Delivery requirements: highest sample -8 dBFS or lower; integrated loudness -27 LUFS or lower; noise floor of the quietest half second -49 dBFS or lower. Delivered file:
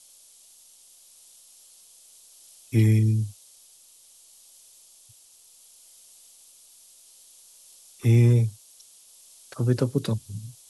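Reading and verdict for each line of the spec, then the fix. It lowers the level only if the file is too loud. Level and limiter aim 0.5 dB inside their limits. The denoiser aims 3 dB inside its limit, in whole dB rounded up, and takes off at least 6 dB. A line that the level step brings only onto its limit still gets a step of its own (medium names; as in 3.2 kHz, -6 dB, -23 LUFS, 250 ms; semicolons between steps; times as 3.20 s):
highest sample -9.5 dBFS: pass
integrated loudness -23.0 LUFS: fail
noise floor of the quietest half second -54 dBFS: pass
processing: trim -4.5 dB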